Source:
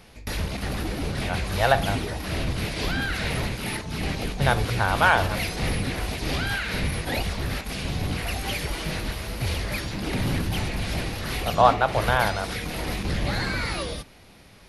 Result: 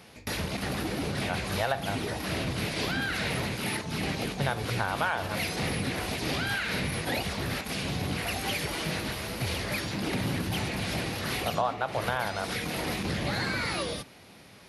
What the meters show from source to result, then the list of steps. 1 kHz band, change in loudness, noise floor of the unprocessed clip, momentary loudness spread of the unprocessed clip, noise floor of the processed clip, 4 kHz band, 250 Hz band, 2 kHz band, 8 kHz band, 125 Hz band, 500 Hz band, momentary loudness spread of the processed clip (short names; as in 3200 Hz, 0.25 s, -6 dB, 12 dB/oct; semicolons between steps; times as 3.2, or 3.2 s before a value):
-7.0 dB, -4.5 dB, -50 dBFS, 10 LU, -51 dBFS, -2.0 dB, -2.5 dB, -4.0 dB, -1.5 dB, -5.5 dB, -5.0 dB, 3 LU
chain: HPF 110 Hz 12 dB/oct; compressor 4:1, threshold -26 dBFS, peak gain reduction 13.5 dB